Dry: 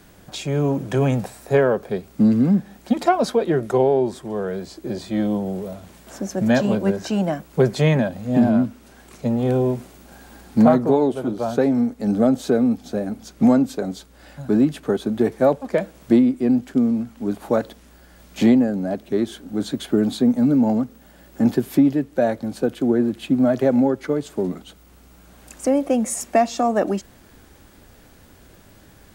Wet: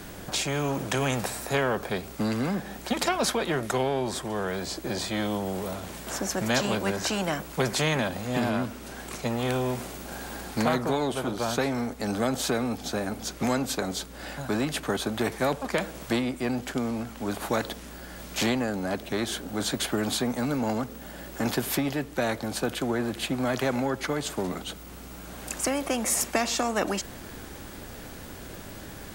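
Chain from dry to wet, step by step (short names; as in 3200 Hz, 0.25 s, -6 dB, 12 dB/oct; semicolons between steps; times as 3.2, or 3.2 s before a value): spectral compressor 2:1; gain -7 dB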